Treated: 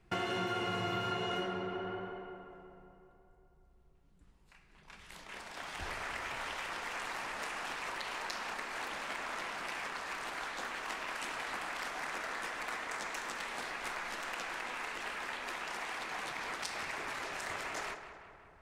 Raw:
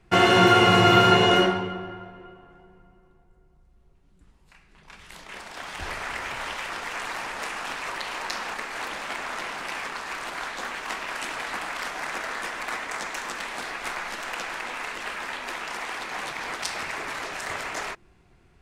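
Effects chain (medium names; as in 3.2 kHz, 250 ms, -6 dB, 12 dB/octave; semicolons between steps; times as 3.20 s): tape echo 185 ms, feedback 68%, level -10.5 dB, low-pass 2.8 kHz; compression 4:1, threshold -28 dBFS, peak gain reduction 13.5 dB; trim -7 dB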